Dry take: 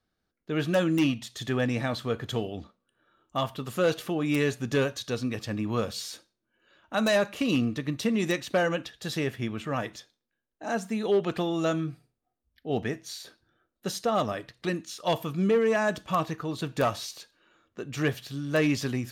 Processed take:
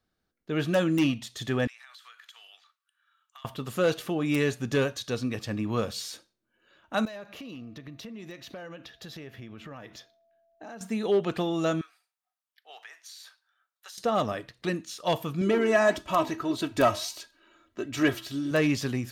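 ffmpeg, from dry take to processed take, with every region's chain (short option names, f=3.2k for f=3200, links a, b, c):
-filter_complex "[0:a]asettb=1/sr,asplit=3[a][b][c];[a]atrim=end=1.674[d];[b]atrim=start=1.67:end=3.45,asetpts=PTS-STARTPTS,afade=t=in:d=0.004:c=qsin,afade=t=out:st=1.776:d=0.004:c=qsin,highpass=f=1.3k:w=0.5412,highpass=f=1.3k:w=1.3066,acompressor=threshold=-46dB:ratio=16:attack=3.2:release=140:knee=1:detection=peak[e];[c]atrim=start=3.446[f];[d][e]acrossfade=d=0.004:c1=hsin:c2=qsin[g];[g][f]acrossfade=d=0.004:c1=qsin:c2=hsin,asettb=1/sr,asplit=3[h][i][j];[h]atrim=end=7.054[k];[i]atrim=start=7.05:end=10.81,asetpts=PTS-STARTPTS,afade=t=in:d=0.004:c=qsin,afade=t=out:st=3.756:d=0.004:c=qsin,equalizer=f=8.5k:w=1.9:g=-11,acompressor=threshold=-40dB:ratio=6:attack=3.2:release=140:knee=1:detection=peak,aeval=exprs='val(0)+0.000562*sin(2*PI*670*n/s)':c=same[l];[j]atrim=start=10.806[m];[k][l]acrossfade=d=0.004:c1=hsin:c2=qsin[n];[n][m]acrossfade=d=0.004:c1=qsin:c2=hsin,asettb=1/sr,asplit=3[o][p][q];[o]atrim=end=11.814[r];[p]atrim=start=11.81:end=13.98,asetpts=PTS-STARTPTS,afade=t=in:d=0.004:c=qsin,afade=t=out:st=2.166:d=0.004:c=qsin,highpass=f=920:w=0.5412,highpass=f=920:w=1.3066,acompressor=threshold=-43dB:ratio=5:attack=3.2:release=140:knee=1:detection=peak[s];[q]atrim=start=13.976[t];[r][s]acrossfade=d=0.004:c1=hsin:c2=qsin[u];[u][t]acrossfade=d=0.004:c1=qsin:c2=hsin,asettb=1/sr,asplit=3[v][w][x];[v]atrim=end=15.414[y];[w]atrim=start=15.41:end=18.51,asetpts=PTS-STARTPTS,afade=t=in:d=0.004:c=qsin,afade=t=out:st=3.096:d=0.004:c=qsin,flanger=delay=3.6:depth=7.1:regen=-87:speed=1.6:shape=sinusoidal,aecho=1:1:3.1:0.7,atrim=end_sample=136710,acontrast=49[z];[x]atrim=start=18.506[aa];[y][z]acrossfade=d=0.004:c1=hsin:c2=qsin[ab];[ab][aa]acrossfade=d=0.004:c1=qsin:c2=hsin"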